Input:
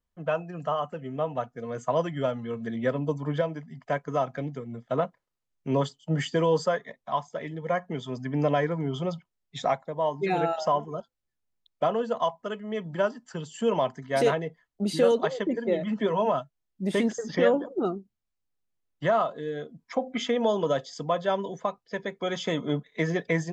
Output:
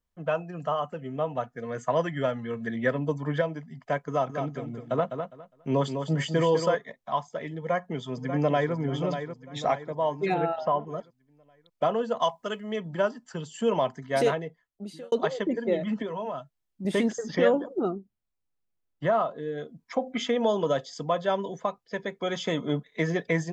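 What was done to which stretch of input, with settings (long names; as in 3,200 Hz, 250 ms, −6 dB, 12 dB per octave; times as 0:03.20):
0:01.44–0:03.42: parametric band 1,800 Hz +7.5 dB 0.49 octaves
0:04.09–0:06.75: repeating echo 204 ms, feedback 20%, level −7 dB
0:07.58–0:08.74: delay throw 590 ms, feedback 45%, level −8.5 dB
0:10.34–0:10.87: high-frequency loss of the air 280 metres
0:12.21–0:12.76: high-shelf EQ 2,600 Hz +9 dB
0:14.16–0:15.12: fade out
0:16.02–0:16.85: downward compressor 2 to 1, threshold −36 dBFS
0:17.81–0:19.58: high-shelf EQ 2,700 Hz −8.5 dB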